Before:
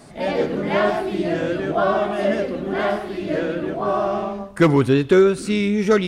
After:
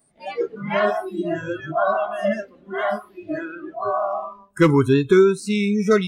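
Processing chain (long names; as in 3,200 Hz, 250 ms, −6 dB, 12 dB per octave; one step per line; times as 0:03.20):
noise reduction from a noise print of the clip's start 24 dB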